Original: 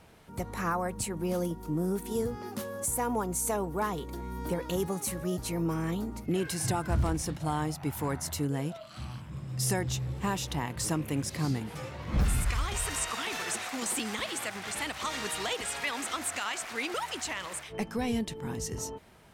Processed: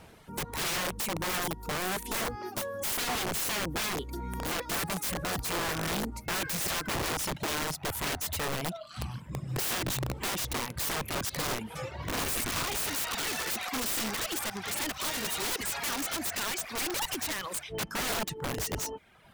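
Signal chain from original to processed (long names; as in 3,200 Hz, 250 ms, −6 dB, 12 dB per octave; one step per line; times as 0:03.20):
reverb reduction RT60 1 s
wrap-around overflow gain 31 dB
level +4.5 dB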